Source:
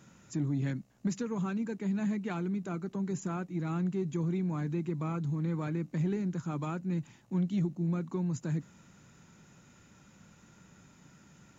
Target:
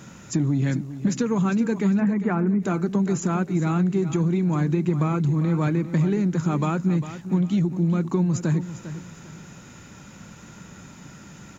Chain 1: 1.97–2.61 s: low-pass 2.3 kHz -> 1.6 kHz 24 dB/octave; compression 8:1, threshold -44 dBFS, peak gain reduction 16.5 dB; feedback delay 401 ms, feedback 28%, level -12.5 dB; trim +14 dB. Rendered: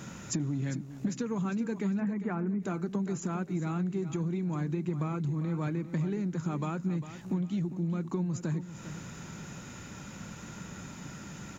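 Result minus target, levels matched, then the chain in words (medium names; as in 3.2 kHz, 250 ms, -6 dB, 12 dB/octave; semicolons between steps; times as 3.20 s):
compression: peak gain reduction +10 dB
1.97–2.61 s: low-pass 2.3 kHz -> 1.6 kHz 24 dB/octave; compression 8:1, threshold -32.5 dBFS, peak gain reduction 6.5 dB; feedback delay 401 ms, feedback 28%, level -12.5 dB; trim +14 dB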